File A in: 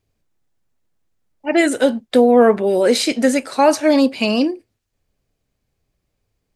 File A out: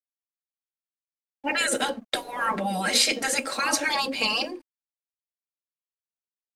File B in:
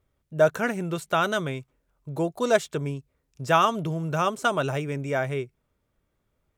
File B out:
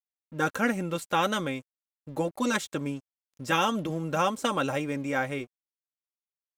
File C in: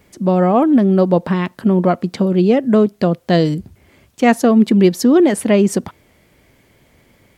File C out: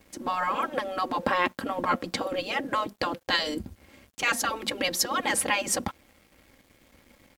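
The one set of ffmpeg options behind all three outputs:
ffmpeg -i in.wav -af "afftfilt=real='re*lt(hypot(re,im),0.501)':imag='im*lt(hypot(re,im),0.501)':win_size=1024:overlap=0.75,aecho=1:1:3.7:0.57,aeval=exprs='sgn(val(0))*max(abs(val(0))-0.00211,0)':channel_layout=same" out.wav

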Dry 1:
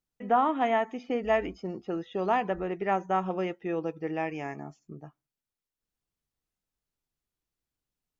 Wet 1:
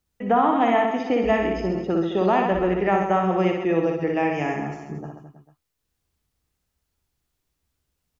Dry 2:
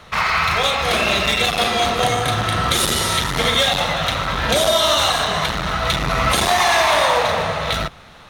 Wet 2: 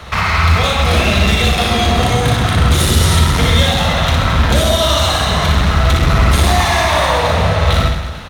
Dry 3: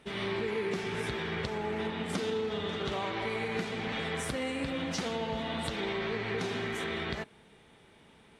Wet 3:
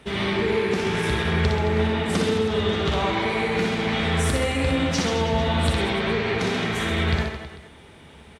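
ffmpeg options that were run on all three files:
ffmpeg -i in.wav -filter_complex "[0:a]equalizer=frequency=74:width_type=o:width=0.63:gain=12,acrossover=split=290[link_01][link_02];[link_02]acompressor=threshold=-30dB:ratio=2[link_03];[link_01][link_03]amix=inputs=2:normalize=0,volume=17.5dB,asoftclip=hard,volume=-17.5dB,aecho=1:1:60|132|218.4|322.1|446.5:0.631|0.398|0.251|0.158|0.1,volume=8.5dB" out.wav

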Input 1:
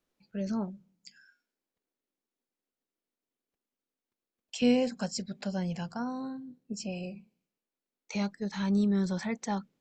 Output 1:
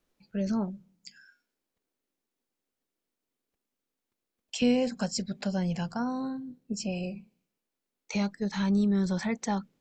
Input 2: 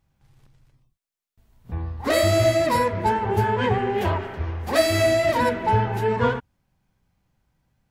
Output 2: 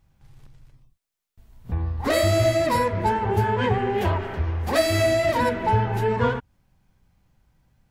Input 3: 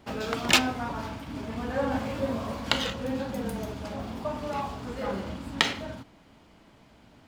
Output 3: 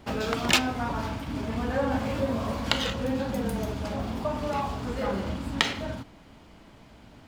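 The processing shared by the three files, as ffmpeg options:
ffmpeg -i in.wav -filter_complex "[0:a]lowshelf=frequency=73:gain=6.5,asplit=2[link_01][link_02];[link_02]acompressor=threshold=-29dB:ratio=6,volume=3dB[link_03];[link_01][link_03]amix=inputs=2:normalize=0,volume=-4dB" out.wav

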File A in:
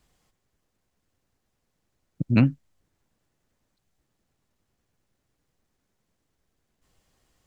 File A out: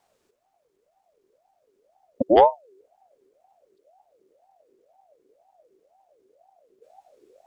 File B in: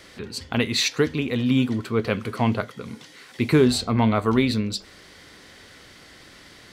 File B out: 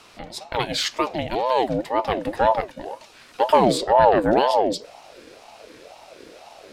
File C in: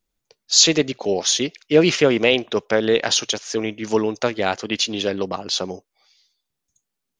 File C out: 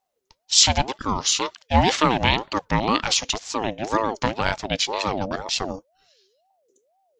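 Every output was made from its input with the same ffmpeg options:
ffmpeg -i in.wav -af "asubboost=boost=8:cutoff=130,aeval=exprs='val(0)*sin(2*PI*580*n/s+580*0.35/2*sin(2*PI*2*n/s))':channel_layout=same,volume=1dB" out.wav

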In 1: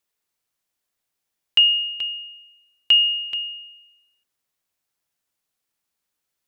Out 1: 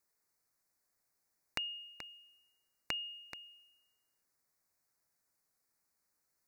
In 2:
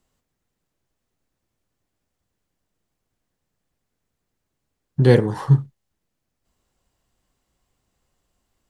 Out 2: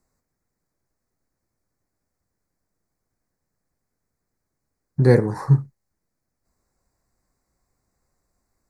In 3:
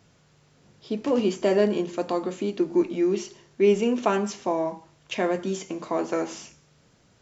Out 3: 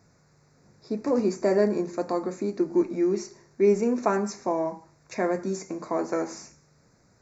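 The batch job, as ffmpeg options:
ffmpeg -i in.wav -af "asuperstop=centerf=3100:order=4:qfactor=1.5,volume=-1dB" out.wav

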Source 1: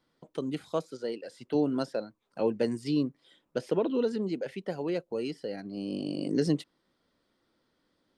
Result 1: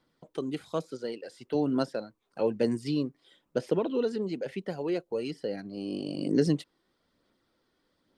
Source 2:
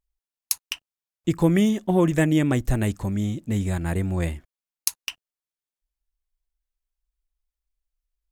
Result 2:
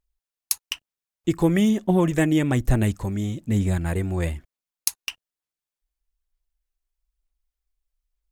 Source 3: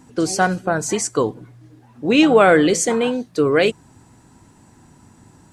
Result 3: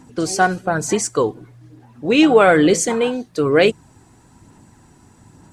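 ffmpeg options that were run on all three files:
ffmpeg -i in.wav -af "aphaser=in_gain=1:out_gain=1:delay=2.8:decay=0.3:speed=1.1:type=sinusoidal" out.wav

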